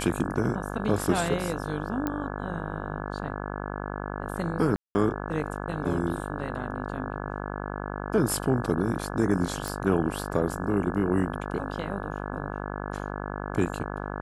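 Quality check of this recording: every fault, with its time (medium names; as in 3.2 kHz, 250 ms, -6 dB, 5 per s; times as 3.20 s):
buzz 50 Hz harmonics 34 -34 dBFS
2.07 s: pop -15 dBFS
4.76–4.95 s: dropout 190 ms
9.68 s: pop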